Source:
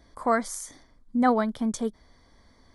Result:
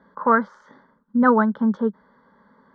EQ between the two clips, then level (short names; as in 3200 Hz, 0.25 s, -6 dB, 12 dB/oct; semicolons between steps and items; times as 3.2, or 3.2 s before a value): air absorption 64 m; speaker cabinet 150–2900 Hz, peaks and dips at 190 Hz +7 dB, 360 Hz +5 dB, 840 Hz +10 dB, 1500 Hz +8 dB; fixed phaser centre 490 Hz, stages 8; +5.5 dB